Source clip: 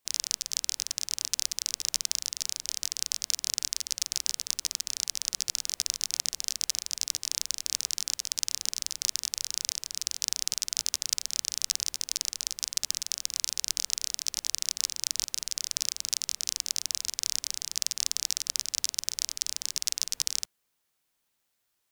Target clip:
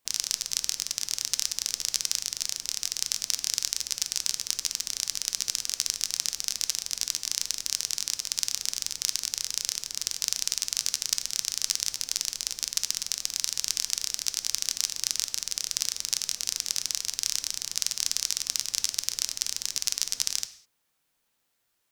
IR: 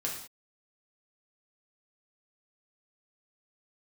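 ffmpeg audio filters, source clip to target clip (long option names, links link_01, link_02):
-filter_complex "[0:a]asplit=2[link_01][link_02];[1:a]atrim=start_sample=2205,highshelf=frequency=5200:gain=-9[link_03];[link_02][link_03]afir=irnorm=-1:irlink=0,volume=-7dB[link_04];[link_01][link_04]amix=inputs=2:normalize=0"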